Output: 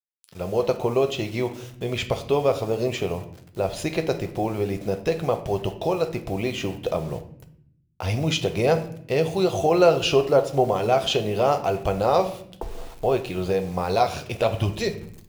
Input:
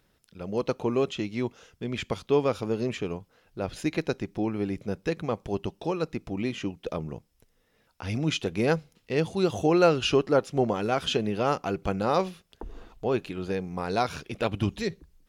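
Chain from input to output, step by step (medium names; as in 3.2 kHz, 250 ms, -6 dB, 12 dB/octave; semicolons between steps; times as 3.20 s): fifteen-band graphic EQ 250 Hz -10 dB, 630 Hz +6 dB, 1.6 kHz -6 dB; in parallel at +3 dB: compression 10:1, threshold -31 dBFS, peak gain reduction 18 dB; on the sum: bit crusher 8-bit; reverberation RT60 0.65 s, pre-delay 8 ms, DRR 6.5 dB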